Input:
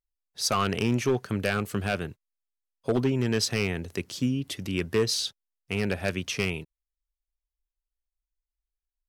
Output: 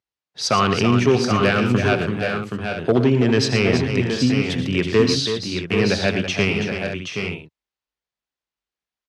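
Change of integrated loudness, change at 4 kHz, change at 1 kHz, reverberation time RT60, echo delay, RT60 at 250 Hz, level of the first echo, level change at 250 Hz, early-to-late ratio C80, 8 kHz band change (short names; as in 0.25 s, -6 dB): +8.5 dB, +8.0 dB, +10.0 dB, none, 82 ms, none, -12.5 dB, +10.0 dB, none, +2.5 dB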